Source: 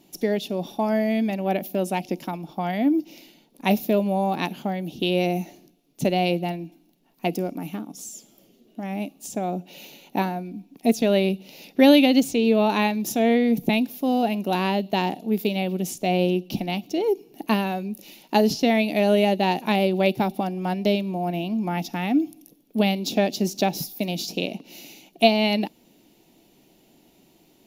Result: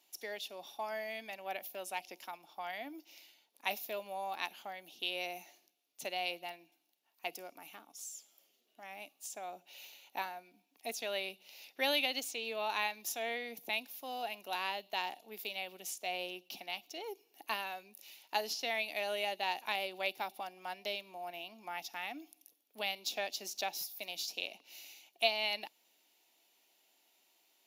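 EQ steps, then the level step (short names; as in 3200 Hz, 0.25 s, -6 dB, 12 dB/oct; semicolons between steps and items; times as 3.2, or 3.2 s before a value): HPF 990 Hz 12 dB/oct; -8.0 dB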